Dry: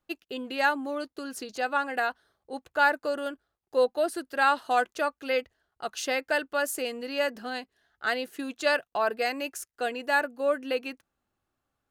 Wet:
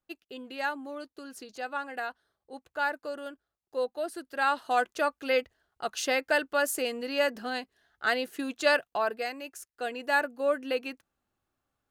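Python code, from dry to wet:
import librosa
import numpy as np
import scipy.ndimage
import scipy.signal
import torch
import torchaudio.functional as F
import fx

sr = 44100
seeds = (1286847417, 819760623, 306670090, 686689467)

y = fx.gain(x, sr, db=fx.line((3.98, -7.0), (5.13, 1.0), (8.83, 1.0), (9.42, -8.0), (10.14, -1.0)))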